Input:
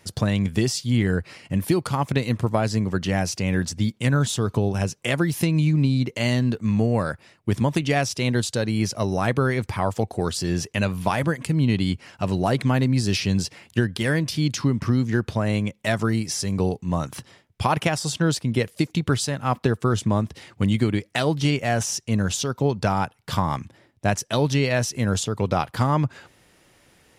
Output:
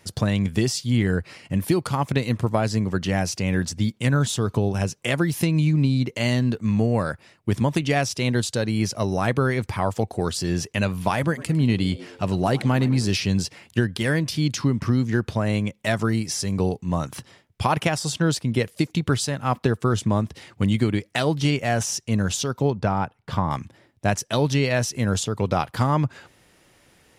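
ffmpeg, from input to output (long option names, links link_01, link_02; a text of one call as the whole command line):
ffmpeg -i in.wav -filter_complex "[0:a]asettb=1/sr,asplit=3[link_01][link_02][link_03];[link_01]atrim=end=11.214[link_04];[link_02]atrim=start=11.21:end=13.11,asetpts=PTS-STARTPTS,afade=type=in:duration=0.004:curve=qsin,afade=type=out:start_time=1.896:duration=0.004:curve=qsin,asplit=5[link_05][link_06][link_07][link_08][link_09];[link_06]adelay=104,afreqshift=85,volume=-19dB[link_10];[link_07]adelay=208,afreqshift=170,volume=-24.7dB[link_11];[link_08]adelay=312,afreqshift=255,volume=-30.4dB[link_12];[link_09]adelay=416,afreqshift=340,volume=-36dB[link_13];[link_05][link_10][link_11][link_12][link_13]amix=inputs=5:normalize=0,atrim=end_sample=83790[link_14];[link_03]atrim=start=13.106[link_15];[link_04][link_14]acrossfade=duration=0.004:curve1=hsin:curve2=qsin[link_16];[link_16][link_15]acrossfade=duration=0.004:curve1=qsin:curve2=hsin,asettb=1/sr,asplit=3[link_17][link_18][link_19];[link_17]atrim=end=22.704[link_20];[link_18]atrim=start=22.7:end=23.51,asetpts=PTS-STARTPTS,afade=type=in:duration=0.004:curve=qsin,afade=type=out:start_time=0.806:duration=0.004:curve=qsin,lowpass=frequency=1700:poles=1[link_21];[link_19]atrim=start=23.506[link_22];[link_20][link_21]acrossfade=duration=0.004:curve1=hsin:curve2=qsin[link_23];[link_23][link_22]acrossfade=duration=0.004:curve1=qsin:curve2=hsin" out.wav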